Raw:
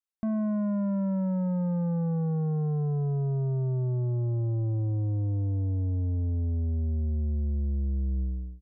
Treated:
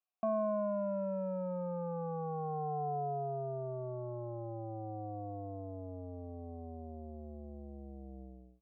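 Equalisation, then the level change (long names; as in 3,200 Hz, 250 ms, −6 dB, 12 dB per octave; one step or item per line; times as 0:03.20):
formant filter a
+12.5 dB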